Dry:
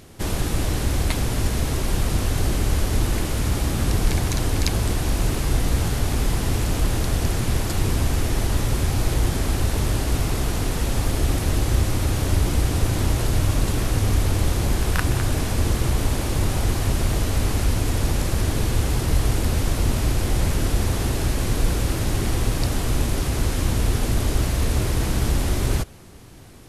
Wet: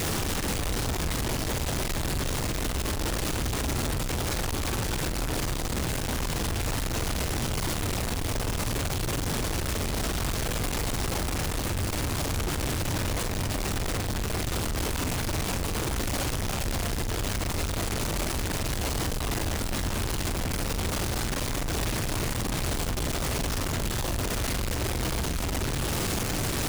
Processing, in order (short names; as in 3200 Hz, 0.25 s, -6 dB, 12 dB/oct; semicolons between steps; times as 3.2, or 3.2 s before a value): delta modulation 64 kbps, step -20.5 dBFS; reverb removal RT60 0.62 s; notches 60/120/180/240/300/360/420/480/540 Hz; in parallel at +1.5 dB: limiter -27 dBFS, peak gain reduction 20.5 dB; on the sum: Schmitt trigger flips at -34.5 dBFS; on a send: flutter echo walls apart 7.6 m, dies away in 0.25 s; on the sum: gain -8.5 dB